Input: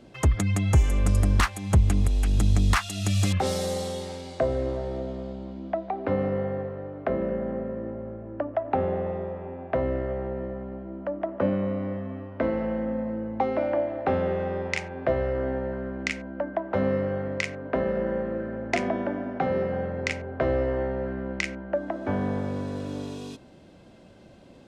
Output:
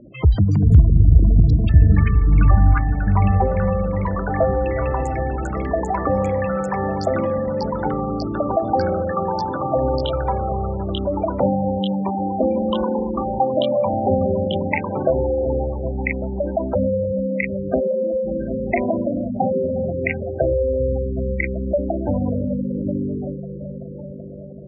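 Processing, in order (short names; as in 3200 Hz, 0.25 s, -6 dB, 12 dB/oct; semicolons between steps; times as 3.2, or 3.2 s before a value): repeats that get brighter 0.383 s, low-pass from 200 Hz, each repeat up 1 oct, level -6 dB; spectral gate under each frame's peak -10 dB strong; echoes that change speed 0.225 s, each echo +7 st, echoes 3, each echo -6 dB; gain +7 dB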